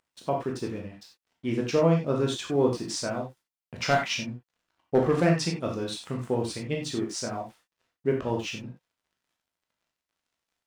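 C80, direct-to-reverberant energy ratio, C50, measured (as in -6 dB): 11.0 dB, -0.5 dB, 5.5 dB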